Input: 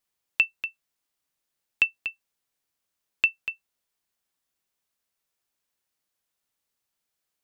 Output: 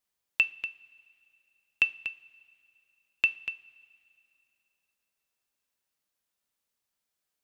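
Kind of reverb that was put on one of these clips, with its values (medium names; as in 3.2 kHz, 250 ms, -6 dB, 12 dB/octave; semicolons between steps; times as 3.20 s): two-slope reverb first 0.35 s, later 2.8 s, from -18 dB, DRR 12.5 dB; trim -2.5 dB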